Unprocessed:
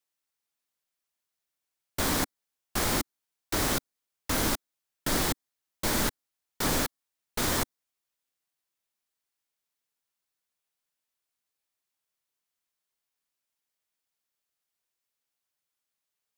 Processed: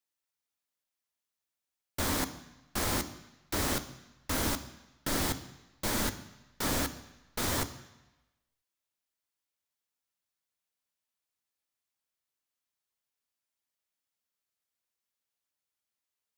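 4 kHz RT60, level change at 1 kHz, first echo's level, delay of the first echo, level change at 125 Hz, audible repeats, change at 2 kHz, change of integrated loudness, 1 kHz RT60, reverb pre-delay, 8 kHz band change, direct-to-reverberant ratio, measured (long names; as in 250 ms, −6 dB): 1.1 s, −3.5 dB, no echo audible, no echo audible, −2.0 dB, no echo audible, −3.5 dB, −3.5 dB, 1.1 s, 3 ms, −3.5 dB, 9.5 dB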